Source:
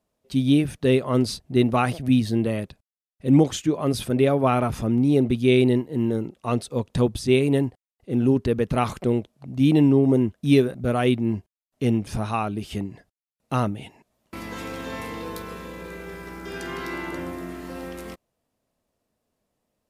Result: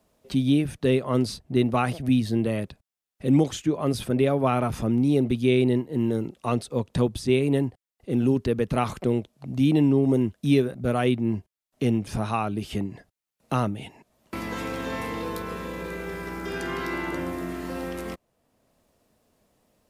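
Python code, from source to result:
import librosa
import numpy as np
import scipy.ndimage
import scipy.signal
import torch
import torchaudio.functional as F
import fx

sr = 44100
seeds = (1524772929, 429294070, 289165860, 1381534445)

y = fx.band_squash(x, sr, depth_pct=40)
y = y * librosa.db_to_amplitude(-2.0)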